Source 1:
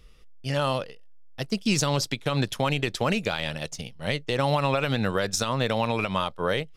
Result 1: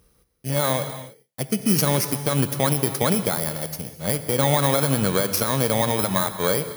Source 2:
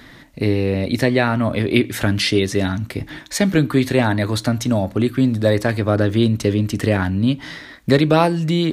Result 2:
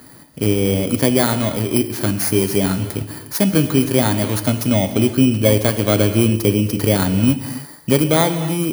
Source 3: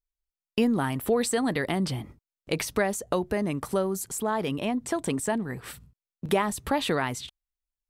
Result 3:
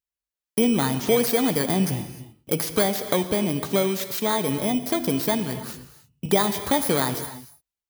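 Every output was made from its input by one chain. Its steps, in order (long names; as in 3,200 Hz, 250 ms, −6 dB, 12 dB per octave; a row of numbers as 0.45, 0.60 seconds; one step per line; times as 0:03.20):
samples in bit-reversed order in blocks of 16 samples
high-pass filter 77 Hz
reverb whose tail is shaped and stops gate 330 ms flat, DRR 9.5 dB
automatic gain control gain up to 4 dB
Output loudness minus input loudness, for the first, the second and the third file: +5.0, +1.5, +5.0 LU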